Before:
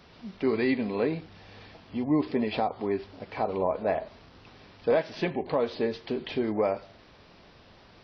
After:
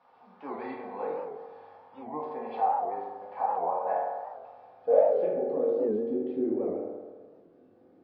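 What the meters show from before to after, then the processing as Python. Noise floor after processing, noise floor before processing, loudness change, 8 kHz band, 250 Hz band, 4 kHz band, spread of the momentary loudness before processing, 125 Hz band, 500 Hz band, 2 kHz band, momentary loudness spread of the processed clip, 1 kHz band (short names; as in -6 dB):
-59 dBFS, -55 dBFS, -0.5 dB, n/a, -6.5 dB, under -20 dB, 12 LU, under -10 dB, +0.5 dB, -12.5 dB, 19 LU, +4.0 dB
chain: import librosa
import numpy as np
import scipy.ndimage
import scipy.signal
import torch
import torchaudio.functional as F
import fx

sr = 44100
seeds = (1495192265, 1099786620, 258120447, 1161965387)

y = fx.filter_sweep_bandpass(x, sr, from_hz=900.0, to_hz=320.0, start_s=4.4, end_s=5.77, q=4.5)
y = fx.rev_fdn(y, sr, rt60_s=1.5, lf_ratio=0.8, hf_ratio=0.35, size_ms=12.0, drr_db=-6.5)
y = fx.record_warp(y, sr, rpm=78.0, depth_cents=160.0)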